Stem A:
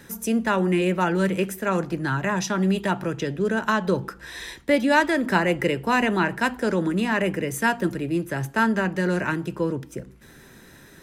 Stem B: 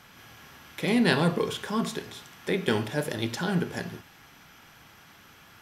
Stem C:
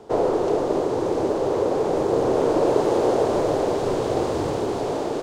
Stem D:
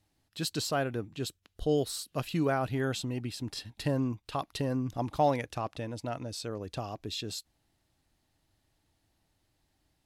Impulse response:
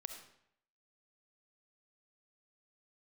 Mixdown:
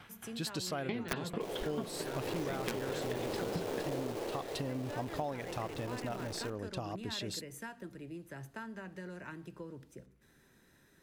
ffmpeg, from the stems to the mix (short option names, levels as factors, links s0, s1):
-filter_complex "[0:a]acompressor=threshold=0.0631:ratio=6,volume=0.112,asplit=2[s0][s1];[s1]volume=0.335[s2];[1:a]lowpass=f=4000:w=0.5412,lowpass=f=4000:w=1.3066,aeval=exprs='(mod(4.47*val(0)+1,2)-1)/4.47':c=same,aeval=exprs='val(0)*pow(10,-21*if(lt(mod(4.5*n/s,1),2*abs(4.5)/1000),1-mod(4.5*n/s,1)/(2*abs(4.5)/1000),(mod(4.5*n/s,1)-2*abs(4.5)/1000)/(1-2*abs(4.5)/1000))/20)':c=same,volume=1.19[s3];[2:a]highshelf=f=2100:g=-10,acrusher=bits=5:dc=4:mix=0:aa=0.000001,adelay=1300,volume=0.316,afade=t=in:st=2.12:d=0.26:silence=0.398107,afade=t=out:st=3.91:d=0.52:silence=0.251189,asplit=2[s4][s5];[s5]volume=0.501[s6];[3:a]volume=0.841[s7];[4:a]atrim=start_sample=2205[s8];[s2][s6]amix=inputs=2:normalize=0[s9];[s9][s8]afir=irnorm=-1:irlink=0[s10];[s0][s3][s4][s7][s10]amix=inputs=5:normalize=0,acompressor=threshold=0.02:ratio=6"